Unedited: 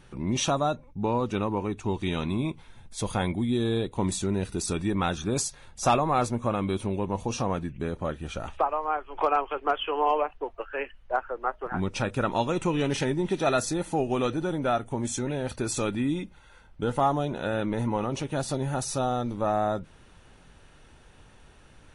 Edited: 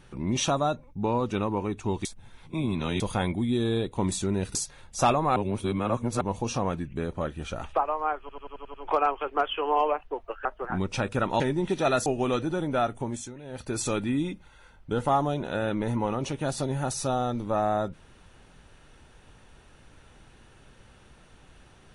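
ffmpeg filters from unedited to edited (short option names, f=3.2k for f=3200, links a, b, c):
-filter_complex "[0:a]asplit=17[a][b][c][d][e][f][g][h][i][j][k][l][m][n][o][p][q];[a]atrim=end=2.052[r];[b]atrim=start=2.048:end=3.002,asetpts=PTS-STARTPTS,areverse[s];[c]atrim=start=2.998:end=4.552[t];[d]atrim=start=5.388:end=6.202[u];[e]atrim=start=6.198:end=7.052,asetpts=PTS-STARTPTS,areverse[v];[f]atrim=start=7.048:end=9.132[w];[g]atrim=start=9.038:end=9.132[x];[h]atrim=start=9.038:end=9.132[y];[i]atrim=start=9.038:end=9.132[z];[j]atrim=start=9.038:end=9.132[aa];[k]atrim=start=9.038:end=9.132[ab];[l]atrim=start=9.038:end=10.752[ac];[m]atrim=start=11.468:end=12.422[ad];[n]atrim=start=13.008:end=13.672[ae];[o]atrim=start=13.968:end=15.25,asetpts=PTS-STARTPTS,afade=t=out:st=0.922:d=0.36:silence=0.199526[af];[p]atrim=start=15.25:end=15.34,asetpts=PTS-STARTPTS,volume=-14dB[ag];[q]atrim=start=15.34,asetpts=PTS-STARTPTS,afade=t=in:d=0.36:silence=0.199526[ah];[r][s]acrossfade=d=0.004:c1=hsin:c2=hsin[ai];[ai][t]acrossfade=d=0.004:c1=hsin:c2=hsin[aj];[aj][u]acrossfade=d=0.004:c1=hsin:c2=hsin[ak];[ak][v]acrossfade=d=0.004:c1=hsin:c2=hsin[al];[al][w]acrossfade=d=0.004:c1=hsin:c2=hsin[am];[am][x]acrossfade=d=0.004:c1=hsin:c2=hsin[an];[an][y]acrossfade=d=0.004:c1=hsin:c2=hsin[ao];[ao][z]acrossfade=d=0.004:c1=hsin:c2=hsin[ap];[ap][aa]acrossfade=d=0.004:c1=hsin:c2=hsin[aq];[aq][ab]acrossfade=d=0.004:c1=hsin:c2=hsin[ar];[ar][ac]acrossfade=d=0.004:c1=hsin:c2=hsin[as];[as][ad]acrossfade=d=0.004:c1=hsin:c2=hsin[at];[at][ae]acrossfade=d=0.004:c1=hsin:c2=hsin[au];[af][ag][ah]concat=n=3:v=0:a=1[av];[au][av]acrossfade=d=0.004:c1=hsin:c2=hsin"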